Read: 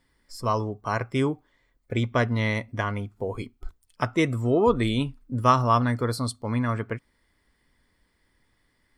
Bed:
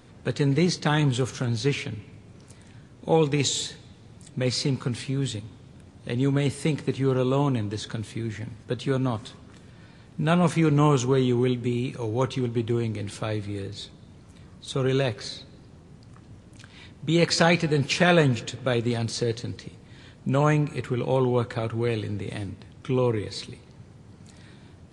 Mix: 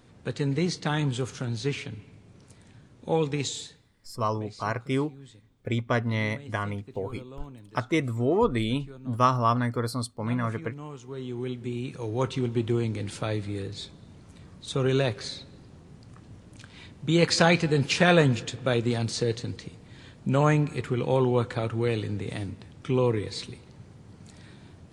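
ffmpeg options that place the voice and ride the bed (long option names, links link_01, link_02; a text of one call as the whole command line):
ffmpeg -i stem1.wav -i stem2.wav -filter_complex "[0:a]adelay=3750,volume=-2.5dB[link_01];[1:a]volume=15.5dB,afade=type=out:start_time=3.31:duration=0.62:silence=0.158489,afade=type=in:start_time=11.03:duration=1.49:silence=0.1[link_02];[link_01][link_02]amix=inputs=2:normalize=0" out.wav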